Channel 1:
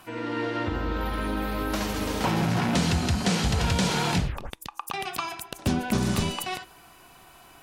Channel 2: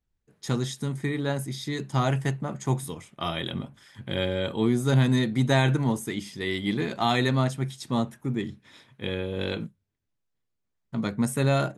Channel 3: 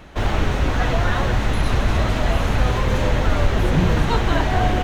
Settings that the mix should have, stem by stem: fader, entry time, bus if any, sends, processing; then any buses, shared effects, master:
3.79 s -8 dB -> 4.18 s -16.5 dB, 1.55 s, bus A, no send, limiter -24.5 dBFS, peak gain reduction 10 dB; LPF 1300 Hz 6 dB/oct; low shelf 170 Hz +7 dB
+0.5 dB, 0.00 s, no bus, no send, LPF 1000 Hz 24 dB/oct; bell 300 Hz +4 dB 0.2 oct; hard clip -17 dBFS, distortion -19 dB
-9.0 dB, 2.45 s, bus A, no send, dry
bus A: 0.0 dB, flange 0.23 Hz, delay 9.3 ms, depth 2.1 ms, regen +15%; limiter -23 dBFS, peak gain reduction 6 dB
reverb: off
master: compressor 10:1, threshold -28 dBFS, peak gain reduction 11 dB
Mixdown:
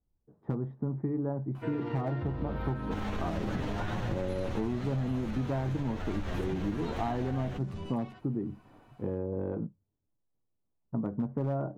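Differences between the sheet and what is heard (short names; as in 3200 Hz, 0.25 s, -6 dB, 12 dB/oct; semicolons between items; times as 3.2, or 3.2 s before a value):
stem 1 -8.0 dB -> +3.0 dB; stem 3: entry 2.45 s -> 2.75 s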